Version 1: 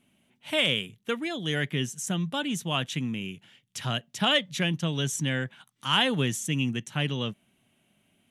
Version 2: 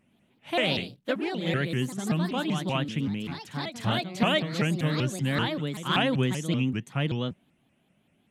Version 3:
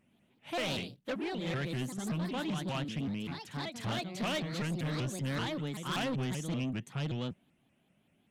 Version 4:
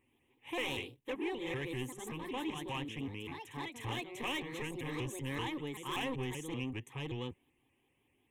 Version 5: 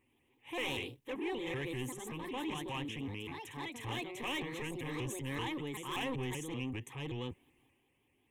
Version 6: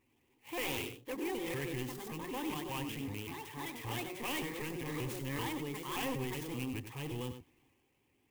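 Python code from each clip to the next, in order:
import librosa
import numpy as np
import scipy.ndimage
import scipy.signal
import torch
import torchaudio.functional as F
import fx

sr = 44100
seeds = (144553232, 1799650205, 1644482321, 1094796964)

y1 = fx.high_shelf(x, sr, hz=2700.0, db=-11.0)
y1 = fx.echo_pitch(y1, sr, ms=109, semitones=2, count=3, db_per_echo=-6.0)
y1 = fx.vibrato_shape(y1, sr, shape='saw_up', rate_hz=5.2, depth_cents=250.0)
y1 = y1 * librosa.db_to_amplitude(1.5)
y2 = 10.0 ** (-26.5 / 20.0) * np.tanh(y1 / 10.0 ** (-26.5 / 20.0))
y2 = y2 * librosa.db_to_amplitude(-3.5)
y3 = fx.fixed_phaser(y2, sr, hz=950.0, stages=8)
y3 = y3 * librosa.db_to_amplitude(1.0)
y4 = fx.transient(y3, sr, attack_db=-3, sustain_db=5)
y5 = y4 + 10.0 ** (-9.5 / 20.0) * np.pad(y4, (int(96 * sr / 1000.0), 0))[:len(y4)]
y5 = fx.clock_jitter(y5, sr, seeds[0], jitter_ms=0.038)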